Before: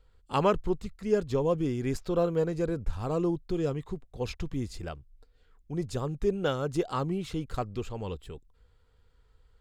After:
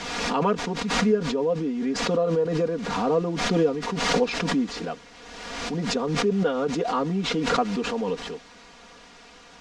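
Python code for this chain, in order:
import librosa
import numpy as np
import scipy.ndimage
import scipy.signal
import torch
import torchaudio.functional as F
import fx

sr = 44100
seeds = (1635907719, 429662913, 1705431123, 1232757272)

p1 = scipy.signal.sosfilt(scipy.signal.butter(4, 180.0, 'highpass', fs=sr, output='sos'), x)
p2 = fx.quant_dither(p1, sr, seeds[0], bits=6, dither='triangular')
p3 = p1 + F.gain(torch.from_numpy(p2), -9.5).numpy()
p4 = fx.high_shelf(p3, sr, hz=2500.0, db=-11.0)
p5 = p4 + 0.9 * np.pad(p4, (int(4.2 * sr / 1000.0), 0))[:len(p4)]
p6 = fx.rider(p5, sr, range_db=4, speed_s=0.5)
p7 = scipy.signal.sosfilt(scipy.signal.butter(4, 6300.0, 'lowpass', fs=sr, output='sos'), p6)
y = fx.pre_swell(p7, sr, db_per_s=34.0)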